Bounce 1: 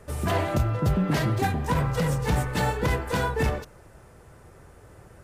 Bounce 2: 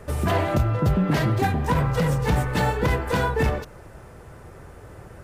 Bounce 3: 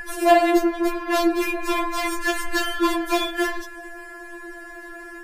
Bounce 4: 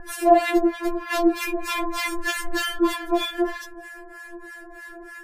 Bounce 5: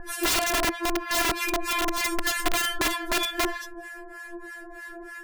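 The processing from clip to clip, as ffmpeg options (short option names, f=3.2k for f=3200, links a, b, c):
-filter_complex "[0:a]equalizer=f=8.7k:w=0.54:g=-4.5,asplit=2[a][b];[b]acompressor=threshold=-31dB:ratio=6,volume=1.5dB[c];[a][c]amix=inputs=2:normalize=0"
-af "aeval=exprs='val(0)+0.0158*sin(2*PI*1700*n/s)':c=same,afftfilt=real='re*4*eq(mod(b,16),0)':imag='im*4*eq(mod(b,16),0)':win_size=2048:overlap=0.75,volume=8.5dB"
-filter_complex "[0:a]acrossover=split=980[a][b];[a]aeval=exprs='val(0)*(1-1/2+1/2*cos(2*PI*3.2*n/s))':c=same[c];[b]aeval=exprs='val(0)*(1-1/2-1/2*cos(2*PI*3.2*n/s))':c=same[d];[c][d]amix=inputs=2:normalize=0,volume=2.5dB"
-af "aeval=exprs='(mod(8.41*val(0)+1,2)-1)/8.41':c=same"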